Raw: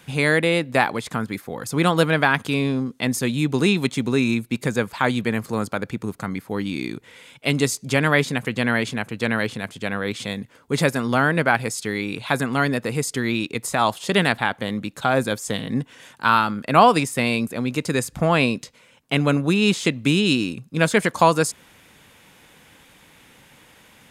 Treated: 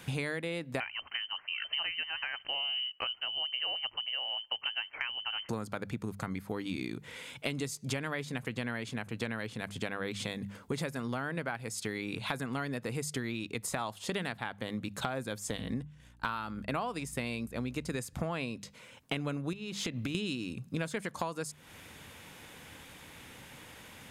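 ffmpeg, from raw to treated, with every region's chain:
ffmpeg -i in.wav -filter_complex "[0:a]asettb=1/sr,asplit=3[link_01][link_02][link_03];[link_01]atrim=end=0.804[link_04];[link_02]atrim=start=0.8:end=5.49,asetpts=PTS-STARTPTS,afade=type=in:duration=0.004:curve=qsin,afade=type=out:start_time=4.686:duration=0.004:curve=qsin,tremolo=f=1:d=0.57,lowpass=frequency=2700:width_type=q:width=0.5098,lowpass=frequency=2700:width_type=q:width=0.6013,lowpass=frequency=2700:width_type=q:width=0.9,lowpass=frequency=2700:width_type=q:width=2.563,afreqshift=-3200[link_05];[link_03]atrim=start=5.486[link_06];[link_04][link_05]acrossfade=duration=0.004:curve1=hsin:curve2=qsin[link_07];[link_07][link_06]acrossfade=duration=0.004:curve1=qsin:curve2=hsin,asettb=1/sr,asplit=3[link_08][link_09][link_10];[link_08]atrim=end=15.504[link_11];[link_09]atrim=start=15.5:end=17.98,asetpts=PTS-STARTPTS,afade=type=in:duration=0.004:curve=qsin,afade=type=out:start_time=2.476:duration=0.004:curve=qsin,aeval=exprs='val(0)+0.00891*(sin(2*PI*60*n/s)+sin(2*PI*2*60*n/s)/2+sin(2*PI*3*60*n/s)/3+sin(2*PI*4*60*n/s)/4+sin(2*PI*5*60*n/s)/5)':channel_layout=same,agate=range=-33dB:threshold=-30dB:ratio=3:release=100:detection=peak[link_12];[link_10]atrim=start=17.976[link_13];[link_11][link_12]acrossfade=duration=0.004:curve1=hsin:curve2=qsin[link_14];[link_14][link_13]acrossfade=duration=0.004:curve1=qsin:curve2=hsin,asettb=1/sr,asplit=3[link_15][link_16][link_17];[link_15]atrim=end=19.534[link_18];[link_16]atrim=start=19.53:end=20.15,asetpts=PTS-STARTPTS,afade=type=in:duration=0.004:curve=qsin,afade=type=out:start_time=0.616:duration=0.004:curve=qsin,equalizer=frequency=8400:width_type=o:width=0.41:gain=-7.5,acompressor=threshold=-29dB:ratio=4:attack=3.2:release=140:knee=1:detection=peak[link_19];[link_17]atrim=start=20.146[link_20];[link_18][link_19]acrossfade=duration=0.004:curve1=hsin:curve2=qsin[link_21];[link_21][link_20]acrossfade=duration=0.004:curve1=qsin:curve2=hsin,equalizer=frequency=86:width=1.5:gain=5.5,bandreject=frequency=50:width_type=h:width=6,bandreject=frequency=100:width_type=h:width=6,bandreject=frequency=150:width_type=h:width=6,bandreject=frequency=200:width_type=h:width=6,acompressor=threshold=-32dB:ratio=12" out.wav

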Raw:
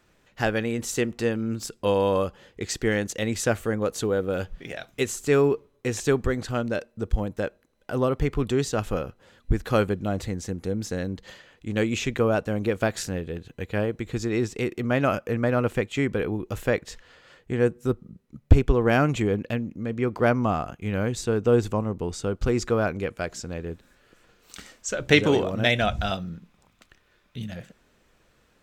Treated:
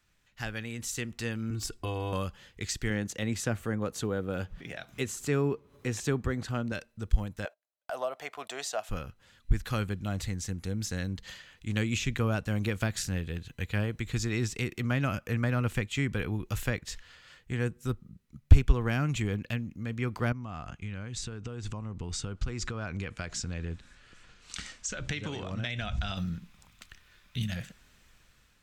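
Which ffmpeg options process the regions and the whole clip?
ffmpeg -i in.wav -filter_complex "[0:a]asettb=1/sr,asplit=3[link_01][link_02][link_03];[link_01]atrim=end=1.504[link_04];[link_02]atrim=start=1.5:end=2.13,asetpts=PTS-STARTPTS,afade=type=in:duration=0.004:curve=qsin,afade=type=out:start_time=0.626:duration=0.004:curve=qsin,tiltshelf=frequency=1400:gain=4.5,acompressor=threshold=-25dB:ratio=2.5:attack=3.2:release=140:knee=1:detection=peak,aecho=1:1:2.7:0.77,atrim=end_sample=27783[link_05];[link_03]atrim=start=2.126[link_06];[link_04][link_05]acrossfade=duration=0.004:curve1=hsin:curve2=qsin[link_07];[link_07][link_06]acrossfade=duration=0.004:curve1=qsin:curve2=hsin,asettb=1/sr,asplit=3[link_08][link_09][link_10];[link_08]atrim=end=2.904[link_11];[link_09]atrim=start=2.9:end=6.72,asetpts=PTS-STARTPTS,afade=type=in:duration=0.004:curve=qsin,afade=type=out:start_time=3.816:duration=0.004:curve=qsin,highpass=frequency=200:poles=1,tiltshelf=frequency=1400:gain=6.5,acompressor=mode=upward:threshold=-33dB:ratio=2.5:attack=3.2:release=140:knee=2.83:detection=peak[link_12];[link_10]atrim=start=6.716[link_13];[link_11][link_12]acrossfade=duration=0.004:curve1=hsin:curve2=qsin[link_14];[link_14][link_13]acrossfade=duration=0.004:curve1=qsin:curve2=hsin,asettb=1/sr,asplit=3[link_15][link_16][link_17];[link_15]atrim=end=7.454[link_18];[link_16]atrim=start=7.45:end=8.89,asetpts=PTS-STARTPTS,afade=type=in:duration=0.004:curve=qsin,afade=type=out:start_time=1.436:duration=0.004:curve=qsin,highpass=frequency=660:width_type=q:width=8.1,agate=range=-23dB:threshold=-42dB:ratio=16:release=100:detection=peak[link_19];[link_17]atrim=start=8.886[link_20];[link_18][link_19]acrossfade=duration=0.004:curve1=hsin:curve2=qsin[link_21];[link_21][link_20]acrossfade=duration=0.004:curve1=qsin:curve2=hsin,asettb=1/sr,asplit=3[link_22][link_23][link_24];[link_22]atrim=end=20.324[link_25];[link_23]atrim=start=20.32:end=26.17,asetpts=PTS-STARTPTS,afade=type=in:duration=0.004:curve=qsin,afade=type=out:start_time=5.846:duration=0.004:curve=qsin,lowpass=frequency=9300:width=0.5412,lowpass=frequency=9300:width=1.3066,acompressor=threshold=-31dB:ratio=6:attack=3.2:release=140:knee=1:detection=peak,highshelf=frequency=6500:gain=-5.5[link_26];[link_24]atrim=start=26.166[link_27];[link_25][link_26]acrossfade=duration=0.004:curve1=hsin:curve2=qsin[link_28];[link_28][link_27]acrossfade=duration=0.004:curve1=qsin:curve2=hsin,dynaudnorm=framelen=530:gausssize=5:maxgain=11.5dB,equalizer=frequency=450:width_type=o:width=2.4:gain=-14,acrossover=split=400[link_29][link_30];[link_30]acompressor=threshold=-28dB:ratio=3[link_31];[link_29][link_31]amix=inputs=2:normalize=0,volume=-4.5dB" out.wav

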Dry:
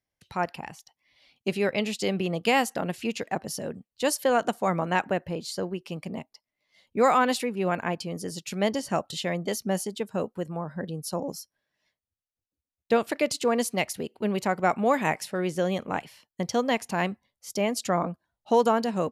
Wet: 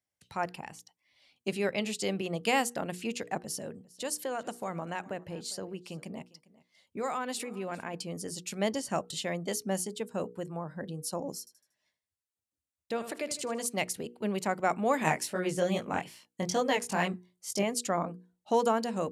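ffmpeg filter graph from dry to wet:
ffmpeg -i in.wav -filter_complex "[0:a]asettb=1/sr,asplit=3[link_01][link_02][link_03];[link_01]atrim=end=3.434[link_04];[link_02]atrim=start=3.43:end=7.94,asetpts=PTS-STARTPTS,afade=type=in:duration=0.004:curve=qsin,afade=type=out:start_time=4.506:duration=0.004:curve=qsin,acompressor=threshold=-31dB:ratio=2:attack=3.2:release=140:knee=1:detection=peak,aecho=1:1:402:0.0841,atrim=end_sample=198891[link_05];[link_03]atrim=start=7.936[link_06];[link_04][link_05]acrossfade=duration=0.004:curve1=hsin:curve2=qsin[link_07];[link_07][link_06]acrossfade=duration=0.004:curve1=qsin:curve2=hsin,asettb=1/sr,asplit=3[link_08][link_09][link_10];[link_08]atrim=end=11.394[link_11];[link_09]atrim=start=11.39:end=13.66,asetpts=PTS-STARTPTS,afade=type=in:duration=0.004:curve=qsin,afade=type=out:start_time=2.266:duration=0.004:curve=qsin,aecho=1:1:78|156|234|312:0.211|0.0845|0.0338|0.0135,atrim=end_sample=100107,acompressor=threshold=-34dB:ratio=1.5:attack=3.2:release=140:knee=1:detection=peak[link_12];[link_10]atrim=start=13.656[link_13];[link_11][link_12]acrossfade=duration=0.004:curve1=hsin:curve2=qsin[link_14];[link_14][link_13]acrossfade=duration=0.004:curve1=qsin:curve2=hsin,asettb=1/sr,asplit=3[link_15][link_16][link_17];[link_15]atrim=end=14.994[link_18];[link_16]atrim=start=14.99:end=17.63,asetpts=PTS-STARTPTS,afade=type=in:duration=0.004:curve=qsin,afade=type=out:start_time=2.636:duration=0.004:curve=qsin,acontrast=47,flanger=delay=17:depth=5.7:speed=2.4[link_19];[link_17]atrim=start=17.626[link_20];[link_18][link_19]acrossfade=duration=0.004:curve1=hsin:curve2=qsin[link_21];[link_21][link_20]acrossfade=duration=0.004:curve1=qsin:curve2=hsin,highpass=63,equalizer=frequency=8300:width_type=o:width=0.72:gain=7,bandreject=frequency=60:width_type=h:width=6,bandreject=frequency=120:width_type=h:width=6,bandreject=frequency=180:width_type=h:width=6,bandreject=frequency=240:width_type=h:width=6,bandreject=frequency=300:width_type=h:width=6,bandreject=frequency=360:width_type=h:width=6,bandreject=frequency=420:width_type=h:width=6,bandreject=frequency=480:width_type=h:width=6,volume=-4.5dB" out.wav

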